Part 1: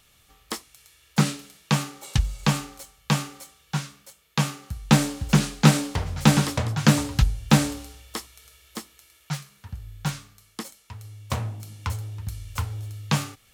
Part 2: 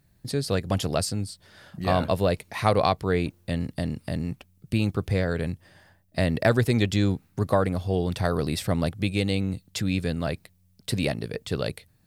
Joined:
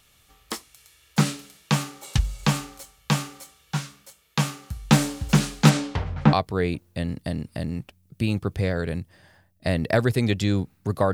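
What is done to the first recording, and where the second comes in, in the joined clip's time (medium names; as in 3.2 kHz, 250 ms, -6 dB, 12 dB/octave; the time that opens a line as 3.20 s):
part 1
5.69–6.33 s: low-pass 8 kHz -> 1.4 kHz
6.33 s: go over to part 2 from 2.85 s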